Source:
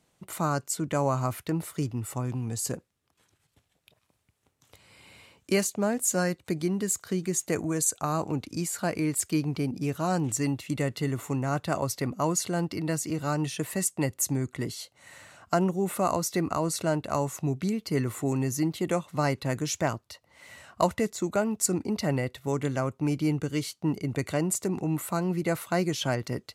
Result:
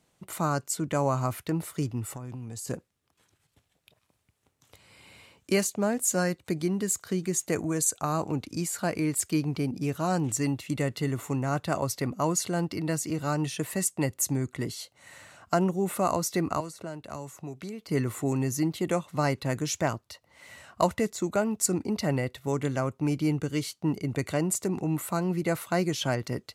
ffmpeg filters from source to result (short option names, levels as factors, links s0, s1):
-filter_complex "[0:a]asettb=1/sr,asplit=3[s0][s1][s2];[s0]atrim=end=2.114[s3];[s1]atrim=start=2.11:end=2.68,asetpts=PTS-STARTPTS,afade=t=in:d=0.004:c=qsin,afade=t=out:st=0.566:d=0.004:c=qsin,acompressor=threshold=0.02:ratio=12:attack=3.2:release=140:knee=1:detection=peak[s4];[s2]atrim=start=2.676[s5];[s3][s4]acrossfade=d=0.004:c1=hsin:c2=qsin[s6];[s6][s5]acrossfade=d=0.004:c1=qsin:c2=hsin,asettb=1/sr,asplit=3[s7][s8][s9];[s7]atrim=end=16.604[s10];[s8]atrim=start=16.6:end=17.89,asetpts=PTS-STARTPTS,afade=t=in:d=0.004:c=qsin,afade=t=out:st=1.286:d=0.004:c=qsin,acrossover=split=380|1600[s11][s12][s13];[s11]acompressor=threshold=0.00794:ratio=4[s14];[s12]acompressor=threshold=0.00891:ratio=4[s15];[s13]acompressor=threshold=0.00355:ratio=4[s16];[s14][s15][s16]amix=inputs=3:normalize=0[s17];[s9]atrim=start=17.886[s18];[s10][s17]acrossfade=d=0.004:c1=hsin:c2=qsin[s19];[s19][s18]acrossfade=d=0.004:c1=qsin:c2=hsin"